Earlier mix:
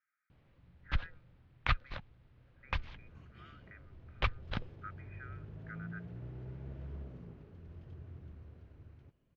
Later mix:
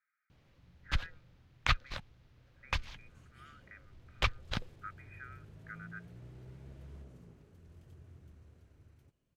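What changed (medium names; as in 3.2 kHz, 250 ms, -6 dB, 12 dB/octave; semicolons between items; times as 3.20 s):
second sound -6.0 dB; master: remove distance through air 260 m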